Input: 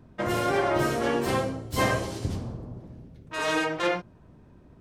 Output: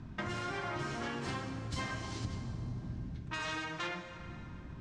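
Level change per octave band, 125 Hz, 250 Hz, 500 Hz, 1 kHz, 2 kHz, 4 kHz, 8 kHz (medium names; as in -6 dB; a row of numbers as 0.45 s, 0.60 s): -6.5 dB, -11.0 dB, -17.5 dB, -11.5 dB, -9.5 dB, -8.0 dB, -11.0 dB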